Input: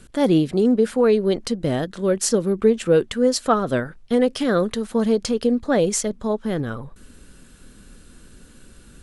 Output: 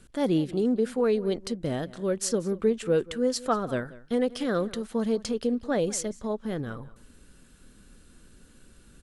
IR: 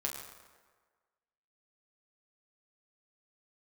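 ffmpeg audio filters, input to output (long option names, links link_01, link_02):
-filter_complex "[0:a]asplit=2[link_01][link_02];[link_02]adelay=186.6,volume=-19dB,highshelf=frequency=4000:gain=-4.2[link_03];[link_01][link_03]amix=inputs=2:normalize=0,volume=-7.5dB"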